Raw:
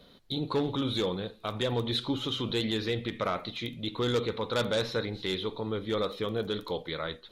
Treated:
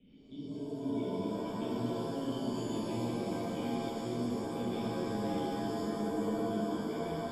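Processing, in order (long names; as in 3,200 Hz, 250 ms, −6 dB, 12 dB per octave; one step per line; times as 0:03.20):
rotating-speaker cabinet horn 5.5 Hz, later 1.1 Hz, at 0:01.46
in parallel at −11.5 dB: bit-depth reduction 8 bits, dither triangular
on the sum: formant resonators in series i
high-frequency loss of the air 78 metres
reversed playback
downward compressor, threshold −45 dBFS, peak gain reduction 16 dB
reversed playback
reverb with rising layers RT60 3 s, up +7 semitones, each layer −2 dB, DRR −7.5 dB
level +2.5 dB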